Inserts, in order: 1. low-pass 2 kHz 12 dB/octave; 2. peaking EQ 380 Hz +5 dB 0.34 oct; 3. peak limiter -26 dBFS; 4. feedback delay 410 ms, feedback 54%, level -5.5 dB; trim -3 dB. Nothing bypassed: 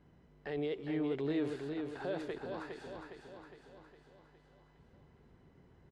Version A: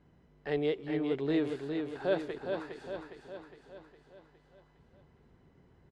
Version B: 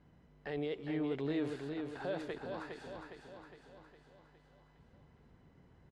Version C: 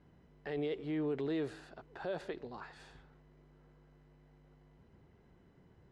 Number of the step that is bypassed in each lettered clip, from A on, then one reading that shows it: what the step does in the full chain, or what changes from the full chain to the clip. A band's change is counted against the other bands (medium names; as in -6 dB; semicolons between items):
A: 3, crest factor change +4.0 dB; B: 2, 500 Hz band -1.5 dB; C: 4, echo-to-direct -4.0 dB to none